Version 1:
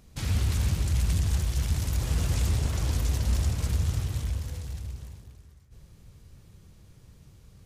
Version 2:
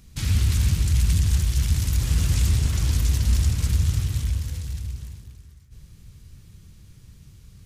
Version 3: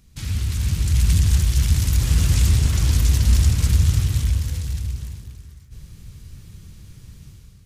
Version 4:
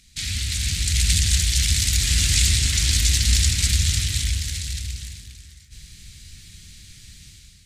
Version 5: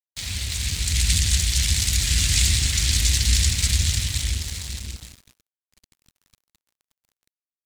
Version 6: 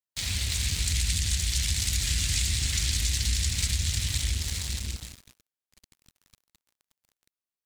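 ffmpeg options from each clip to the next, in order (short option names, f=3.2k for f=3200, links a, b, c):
-af "equalizer=f=630:t=o:w=1.9:g=-11,volume=6dB"
-af "dynaudnorm=f=560:g=3:m=10dB,volume=-4dB"
-af "equalizer=f=125:t=o:w=1:g=-5,equalizer=f=500:t=o:w=1:g=-7,equalizer=f=1k:t=o:w=1:g=-10,equalizer=f=2k:t=o:w=1:g=11,equalizer=f=4k:t=o:w=1:g=11,equalizer=f=8k:t=o:w=1:g=11,volume=-3dB"
-af "aeval=exprs='sgn(val(0))*max(abs(val(0))-0.0178,0)':c=same"
-af "acompressor=threshold=-23dB:ratio=6"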